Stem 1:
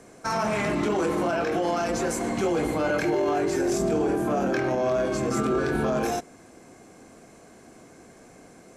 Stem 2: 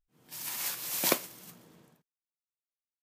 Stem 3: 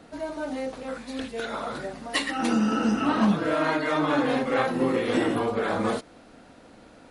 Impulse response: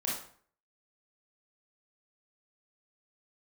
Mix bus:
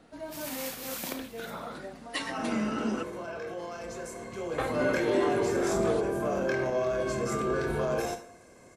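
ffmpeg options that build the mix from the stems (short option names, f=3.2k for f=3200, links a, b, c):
-filter_complex "[0:a]aecho=1:1:1.9:0.45,adelay=1950,volume=-7.5dB,afade=t=in:st=4.36:d=0.57:silence=0.375837,asplit=2[a][b];[b]volume=-9dB[c];[1:a]bass=f=250:g=7,treble=f=4k:g=-4,acompressor=threshold=-37dB:ratio=6,volume=-1dB,asplit=2[d][e];[e]volume=-7.5dB[f];[2:a]volume=-7.5dB,asplit=3[g][h][i];[g]atrim=end=3.03,asetpts=PTS-STARTPTS,afade=t=out:st=3.026:d=0.004:c=hsin[j];[h]atrim=start=3.03:end=4.58,asetpts=PTS-STARTPTS,volume=0[k];[i]atrim=start=4.58,asetpts=PTS-STARTPTS,afade=t=in:d=0.004:c=hsin[l];[j][k][l]concat=n=3:v=0:a=1[m];[3:a]atrim=start_sample=2205[n];[c][f]amix=inputs=2:normalize=0[o];[o][n]afir=irnorm=-1:irlink=0[p];[a][d][m][p]amix=inputs=4:normalize=0"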